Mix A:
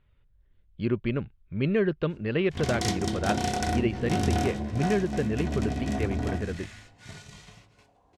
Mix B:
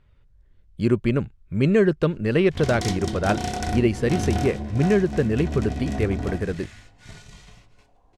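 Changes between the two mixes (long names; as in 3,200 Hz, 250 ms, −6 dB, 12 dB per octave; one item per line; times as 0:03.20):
speech: remove transistor ladder low-pass 4,300 Hz, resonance 30%
background: remove high-pass filter 73 Hz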